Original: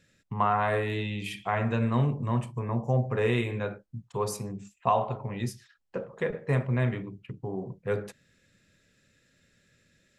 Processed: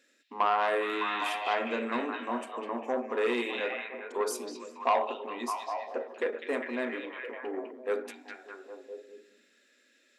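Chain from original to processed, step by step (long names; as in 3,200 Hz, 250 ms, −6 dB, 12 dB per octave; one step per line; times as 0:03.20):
linear-phase brick-wall high-pass 230 Hz
echo through a band-pass that steps 203 ms, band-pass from 3,300 Hz, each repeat −0.7 octaves, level −0.5 dB
saturating transformer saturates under 1,100 Hz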